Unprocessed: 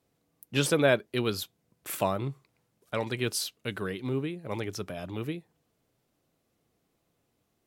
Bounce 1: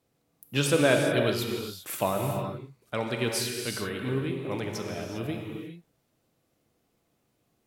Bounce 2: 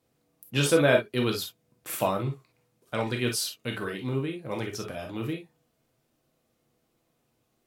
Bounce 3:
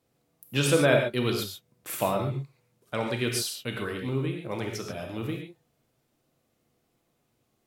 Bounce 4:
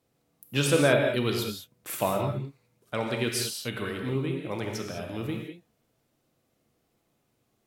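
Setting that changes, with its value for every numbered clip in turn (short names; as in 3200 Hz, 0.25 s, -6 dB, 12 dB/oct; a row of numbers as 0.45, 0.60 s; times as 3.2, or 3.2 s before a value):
non-linear reverb, gate: 430, 80, 160, 230 ms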